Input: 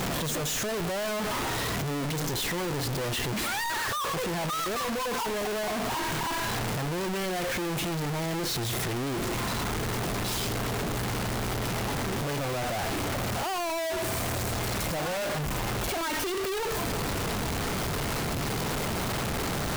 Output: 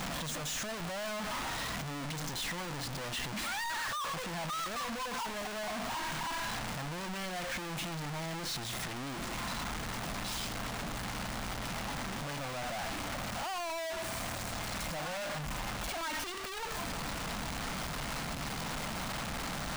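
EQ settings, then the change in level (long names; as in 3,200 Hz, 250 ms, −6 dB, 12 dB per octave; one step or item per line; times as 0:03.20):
graphic EQ with 15 bands 100 Hz −11 dB, 400 Hz −12 dB, 16,000 Hz −9 dB
−5.0 dB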